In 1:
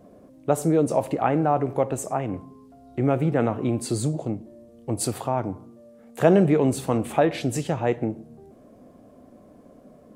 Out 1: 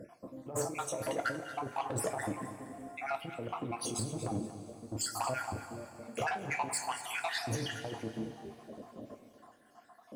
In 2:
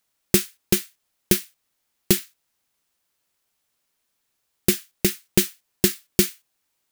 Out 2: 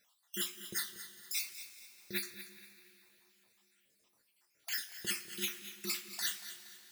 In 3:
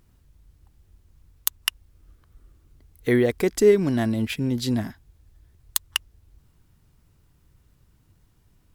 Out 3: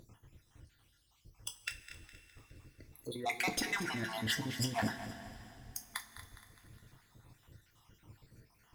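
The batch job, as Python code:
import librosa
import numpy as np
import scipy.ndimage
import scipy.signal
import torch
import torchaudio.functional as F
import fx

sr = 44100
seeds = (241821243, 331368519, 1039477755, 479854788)

y = fx.spec_dropout(x, sr, seeds[0], share_pct=62)
y = fx.over_compress(y, sr, threshold_db=-33.0, ratio=-1.0)
y = fx.high_shelf(y, sr, hz=6700.0, db=-7.0)
y = fx.echo_feedback(y, sr, ms=206, feedback_pct=50, wet_db=-21)
y = 10.0 ** (-27.0 / 20.0) * np.tanh(y / 10.0 ** (-27.0 / 20.0))
y = fx.low_shelf(y, sr, hz=140.0, db=-10.0)
y = fx.rev_double_slope(y, sr, seeds[1], early_s=0.24, late_s=3.6, knee_db=-19, drr_db=5.0)
y = fx.echo_crushed(y, sr, ms=235, feedback_pct=35, bits=11, wet_db=-13.0)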